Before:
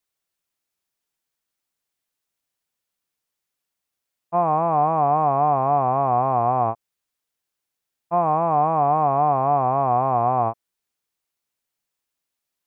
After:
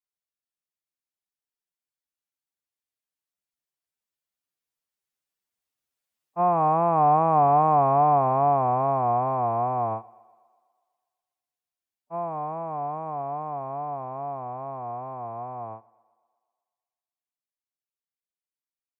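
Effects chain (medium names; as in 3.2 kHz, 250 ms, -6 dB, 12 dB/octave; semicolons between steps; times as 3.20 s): Doppler pass-by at 4.99 s, 7 m/s, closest 6.3 m; thinning echo 82 ms, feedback 63%, high-pass 200 Hz, level -23.5 dB; time stretch by phase-locked vocoder 1.5×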